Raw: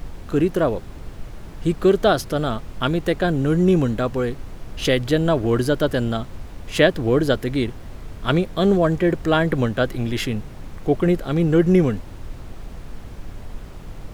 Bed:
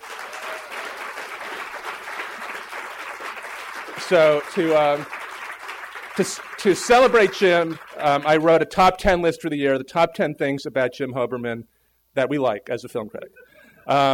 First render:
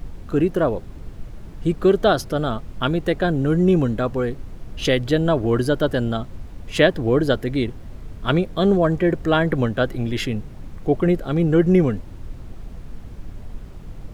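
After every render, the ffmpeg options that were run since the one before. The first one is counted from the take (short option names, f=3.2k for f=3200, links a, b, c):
-af "afftdn=nr=6:nf=-37"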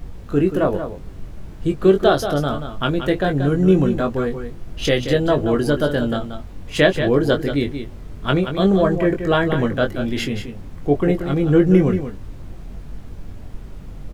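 -filter_complex "[0:a]asplit=2[a][b];[b]adelay=21,volume=-6dB[c];[a][c]amix=inputs=2:normalize=0,aecho=1:1:181:0.355"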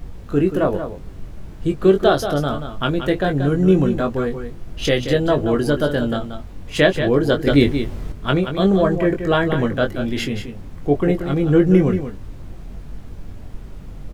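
-filter_complex "[0:a]asplit=3[a][b][c];[a]atrim=end=7.472[d];[b]atrim=start=7.468:end=8.122,asetpts=PTS-STARTPTS,volume=7dB[e];[c]atrim=start=8.118[f];[d][e]acrossfade=d=0.004:c1=hsin:c2=hsin[g];[g][f]acrossfade=d=0.004:c1=hsin:c2=hsin"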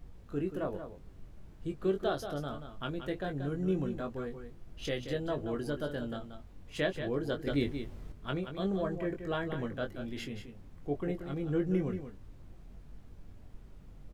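-af "volume=-17dB"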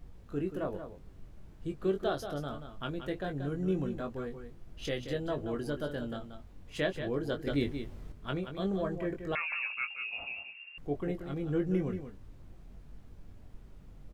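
-filter_complex "[0:a]asettb=1/sr,asplit=3[a][b][c];[a]atrim=end=9.354[d];[b]atrim=start=9.35:end=10.78,asetpts=PTS-STARTPTS,afade=t=in:d=0.004:c=qsin,afade=t=out:st=1.426:d=0.004:c=qsin,lowpass=f=2.4k:t=q:w=0.5098,lowpass=f=2.4k:t=q:w=0.6013,lowpass=f=2.4k:t=q:w=0.9,lowpass=f=2.4k:t=q:w=2.563,afreqshift=-2800[e];[c]atrim=start=10.776[f];[d][e]acrossfade=d=0.004:c1=hsin:c2=qsin[g];[g][f]acrossfade=d=0.004:c1=qsin:c2=hsin"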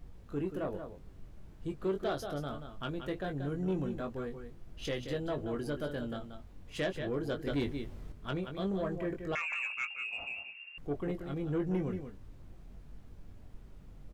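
-af "asoftclip=type=tanh:threshold=-25.5dB"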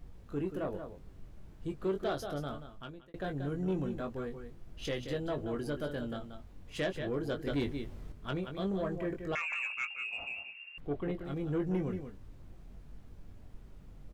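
-filter_complex "[0:a]asettb=1/sr,asplit=3[a][b][c];[a]atrim=end=10.804[d];[b]atrim=start=10.8:end=11.25,asetpts=PTS-STARTPTS,afade=t=in:d=0.004:c=qsin,afade=t=out:st=0.446:d=0.004:c=qsin,highshelf=f=4.7k:t=q:w=1.5:g=-6.5[e];[c]atrim=start=11.246[f];[d][e]acrossfade=d=0.004:c1=hsin:c2=qsin[g];[g][f]acrossfade=d=0.004:c1=qsin:c2=hsin,asplit=2[h][i];[h]atrim=end=3.14,asetpts=PTS-STARTPTS,afade=t=out:st=2.49:d=0.65[j];[i]atrim=start=3.14,asetpts=PTS-STARTPTS,afade=t=in:d=0.004:c=hsin[k];[j][k]concat=n=2:v=0:a=1"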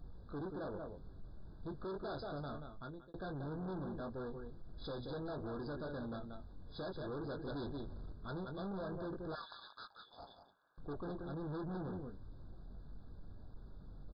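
-af "aresample=11025,asoftclip=type=tanh:threshold=-40dB,aresample=44100,afftfilt=real='re*eq(mod(floor(b*sr/1024/1700),2),0)':imag='im*eq(mod(floor(b*sr/1024/1700),2),0)':win_size=1024:overlap=0.75"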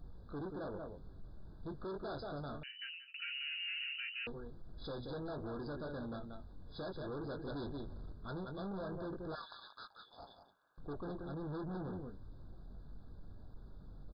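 -filter_complex "[0:a]asettb=1/sr,asplit=3[a][b][c];[a]atrim=end=2.634[d];[b]atrim=start=2.63:end=4.27,asetpts=PTS-STARTPTS,afade=t=in:d=0.004:c=qsin,afade=t=out:st=1.636:d=0.004:c=qsin,lowpass=f=2.6k:t=q:w=0.5098,lowpass=f=2.6k:t=q:w=0.6013,lowpass=f=2.6k:t=q:w=0.9,lowpass=f=2.6k:t=q:w=2.563,afreqshift=-3000[e];[c]atrim=start=4.266[f];[d][e]acrossfade=d=0.004:c1=hsin:c2=qsin[g];[g][f]acrossfade=d=0.004:c1=qsin:c2=hsin"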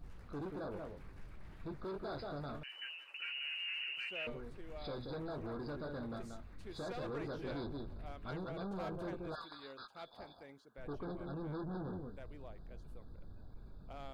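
-filter_complex "[1:a]volume=-33.5dB[a];[0:a][a]amix=inputs=2:normalize=0"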